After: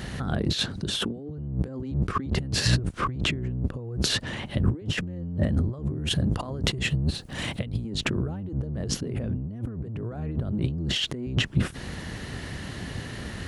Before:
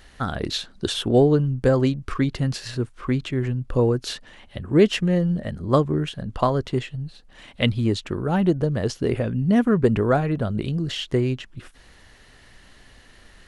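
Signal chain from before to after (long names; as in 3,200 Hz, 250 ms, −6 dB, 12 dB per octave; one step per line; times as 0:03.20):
sub-octave generator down 1 octave, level +1 dB
0:05.80–0:07.90: high-shelf EQ 7,400 Hz +10.5 dB
compressor whose output falls as the input rises −34 dBFS, ratio −1
high-pass filter 98 Hz 12 dB per octave
low-shelf EQ 350 Hz +11 dB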